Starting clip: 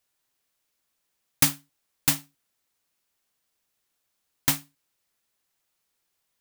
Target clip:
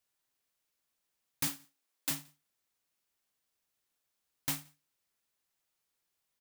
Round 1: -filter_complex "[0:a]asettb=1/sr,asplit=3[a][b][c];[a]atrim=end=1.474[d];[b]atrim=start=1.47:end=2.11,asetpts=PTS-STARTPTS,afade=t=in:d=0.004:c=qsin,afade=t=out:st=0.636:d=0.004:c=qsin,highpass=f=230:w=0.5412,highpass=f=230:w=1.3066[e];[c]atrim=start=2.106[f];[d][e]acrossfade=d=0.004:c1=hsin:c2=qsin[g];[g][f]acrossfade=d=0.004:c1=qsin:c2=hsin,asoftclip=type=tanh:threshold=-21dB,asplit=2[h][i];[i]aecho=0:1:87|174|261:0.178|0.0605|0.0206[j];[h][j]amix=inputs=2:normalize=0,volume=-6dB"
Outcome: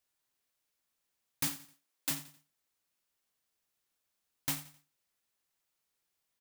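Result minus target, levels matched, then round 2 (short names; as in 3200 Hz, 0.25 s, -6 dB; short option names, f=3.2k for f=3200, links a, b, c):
echo-to-direct +7 dB
-filter_complex "[0:a]asettb=1/sr,asplit=3[a][b][c];[a]atrim=end=1.474[d];[b]atrim=start=1.47:end=2.11,asetpts=PTS-STARTPTS,afade=t=in:d=0.004:c=qsin,afade=t=out:st=0.636:d=0.004:c=qsin,highpass=f=230:w=0.5412,highpass=f=230:w=1.3066[e];[c]atrim=start=2.106[f];[d][e]acrossfade=d=0.004:c1=hsin:c2=qsin[g];[g][f]acrossfade=d=0.004:c1=qsin:c2=hsin,asoftclip=type=tanh:threshold=-21dB,asplit=2[h][i];[i]aecho=0:1:87|174:0.0794|0.027[j];[h][j]amix=inputs=2:normalize=0,volume=-6dB"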